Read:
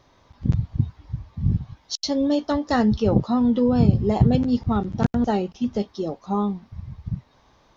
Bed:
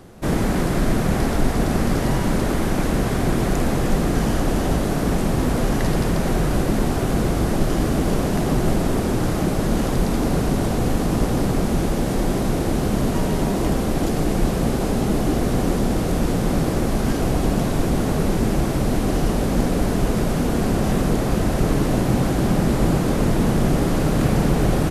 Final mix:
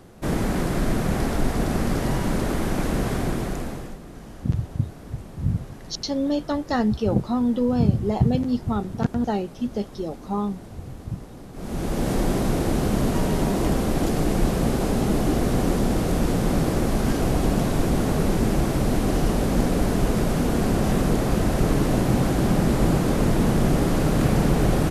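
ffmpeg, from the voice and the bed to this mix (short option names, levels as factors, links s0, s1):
-filter_complex "[0:a]adelay=4000,volume=0.75[s0];[1:a]volume=6.31,afade=t=out:st=3.12:d=0.86:silence=0.133352,afade=t=in:st=11.53:d=0.56:silence=0.105925[s1];[s0][s1]amix=inputs=2:normalize=0"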